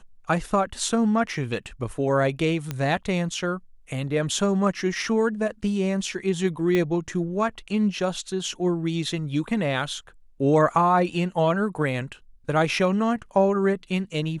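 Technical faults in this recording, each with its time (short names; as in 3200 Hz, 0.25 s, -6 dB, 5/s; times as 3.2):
2.71 pop -14 dBFS
6.75 pop -12 dBFS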